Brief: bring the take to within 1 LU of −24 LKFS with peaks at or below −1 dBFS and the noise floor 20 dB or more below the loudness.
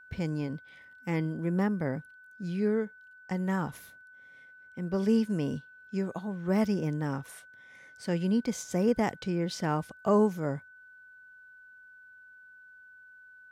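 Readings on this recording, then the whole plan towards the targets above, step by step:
interfering tone 1,500 Hz; level of the tone −51 dBFS; integrated loudness −31.0 LKFS; sample peak −15.0 dBFS; target loudness −24.0 LKFS
→ notch filter 1,500 Hz, Q 30
level +7 dB

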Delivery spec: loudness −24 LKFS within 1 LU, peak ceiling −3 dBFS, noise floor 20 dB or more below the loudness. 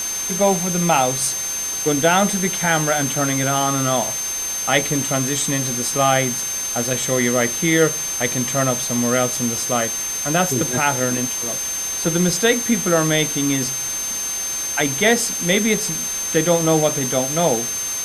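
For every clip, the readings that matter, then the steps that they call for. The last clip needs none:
interfering tone 6,300 Hz; level of the tone −23 dBFS; background noise floor −25 dBFS; target noise floor −39 dBFS; integrated loudness −18.5 LKFS; sample peak −2.5 dBFS; target loudness −24.0 LKFS
→ notch filter 6,300 Hz, Q 30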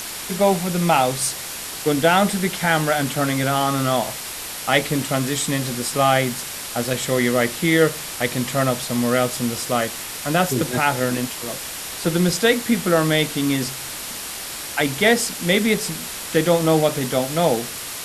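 interfering tone none found; background noise floor −32 dBFS; target noise floor −41 dBFS
→ noise reduction from a noise print 9 dB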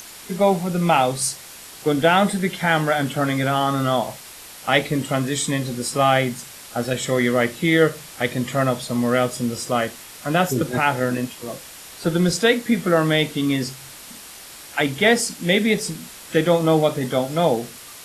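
background noise floor −40 dBFS; target noise floor −41 dBFS
→ noise reduction from a noise print 6 dB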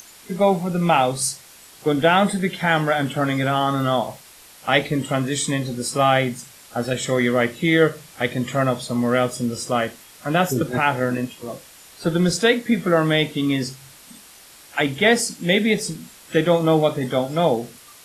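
background noise floor −46 dBFS; integrated loudness −20.5 LKFS; sample peak −3.5 dBFS; target loudness −24.0 LKFS
→ level −3.5 dB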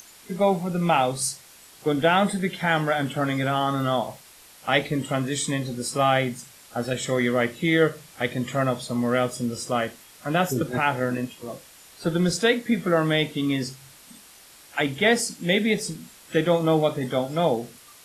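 integrated loudness −24.0 LKFS; sample peak −7.0 dBFS; background noise floor −50 dBFS

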